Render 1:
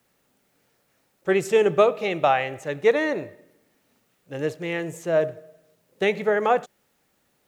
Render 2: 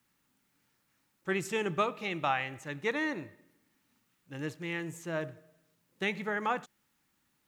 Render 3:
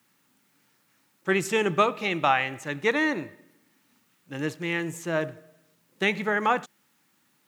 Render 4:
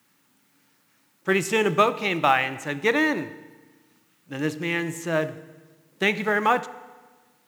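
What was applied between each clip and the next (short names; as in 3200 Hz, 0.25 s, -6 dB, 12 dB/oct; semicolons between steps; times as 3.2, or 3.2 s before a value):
band shelf 540 Hz -10 dB 1.1 oct; gain -6 dB
HPF 140 Hz 12 dB/oct; gain +8 dB
in parallel at -10 dB: short-mantissa float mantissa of 2-bit; on the sum: FDN reverb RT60 1.4 s, low-frequency decay 1.25×, high-frequency decay 0.85×, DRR 14.5 dB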